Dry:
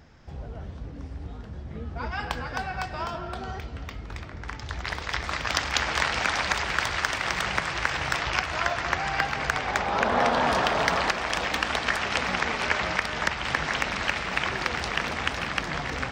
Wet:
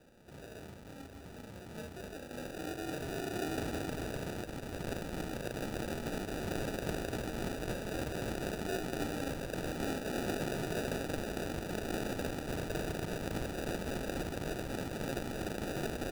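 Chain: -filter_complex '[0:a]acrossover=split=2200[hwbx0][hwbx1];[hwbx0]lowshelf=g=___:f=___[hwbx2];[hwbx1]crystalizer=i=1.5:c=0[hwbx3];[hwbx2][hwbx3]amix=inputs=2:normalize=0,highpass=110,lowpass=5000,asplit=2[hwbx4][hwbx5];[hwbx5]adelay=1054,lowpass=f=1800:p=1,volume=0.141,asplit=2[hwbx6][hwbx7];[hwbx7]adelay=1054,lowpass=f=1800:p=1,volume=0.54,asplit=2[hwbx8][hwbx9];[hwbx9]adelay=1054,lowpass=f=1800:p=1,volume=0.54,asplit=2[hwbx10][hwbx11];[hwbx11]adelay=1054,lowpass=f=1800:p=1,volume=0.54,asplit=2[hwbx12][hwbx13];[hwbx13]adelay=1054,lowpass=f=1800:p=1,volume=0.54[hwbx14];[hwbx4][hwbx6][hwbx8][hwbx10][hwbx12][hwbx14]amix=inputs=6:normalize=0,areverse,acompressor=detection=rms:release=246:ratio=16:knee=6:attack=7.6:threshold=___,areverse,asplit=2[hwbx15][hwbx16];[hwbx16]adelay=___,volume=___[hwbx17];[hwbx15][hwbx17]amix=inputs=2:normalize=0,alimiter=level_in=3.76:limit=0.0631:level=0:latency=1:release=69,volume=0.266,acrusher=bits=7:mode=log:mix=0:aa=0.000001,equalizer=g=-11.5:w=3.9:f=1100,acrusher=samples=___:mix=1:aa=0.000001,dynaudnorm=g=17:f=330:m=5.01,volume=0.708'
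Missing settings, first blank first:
-11, 260, 0.0126, 36, 0.708, 41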